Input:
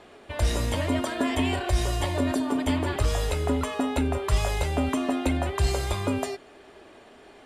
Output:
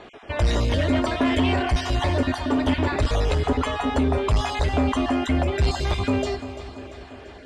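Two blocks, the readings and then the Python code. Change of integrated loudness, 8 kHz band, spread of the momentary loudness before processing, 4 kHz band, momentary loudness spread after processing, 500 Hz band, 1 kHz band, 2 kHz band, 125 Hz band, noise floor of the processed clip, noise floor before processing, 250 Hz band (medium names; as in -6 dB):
+3.5 dB, -4.0 dB, 2 LU, +3.5 dB, 11 LU, +4.0 dB, +4.5 dB, +4.5 dB, +4.0 dB, -43 dBFS, -51 dBFS, +3.5 dB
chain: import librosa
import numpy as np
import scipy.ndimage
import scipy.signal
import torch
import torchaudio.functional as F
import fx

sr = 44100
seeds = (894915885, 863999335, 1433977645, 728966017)

y = fx.spec_dropout(x, sr, seeds[0], share_pct=23)
y = fx.echo_feedback(y, sr, ms=342, feedback_pct=57, wet_db=-14.5)
y = 10.0 ** (-21.0 / 20.0) * np.tanh(y / 10.0 ** (-21.0 / 20.0))
y = scipy.signal.sosfilt(scipy.signal.butter(2, 5100.0, 'lowpass', fs=sr, output='sos'), y)
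y = y * librosa.db_to_amplitude(7.0)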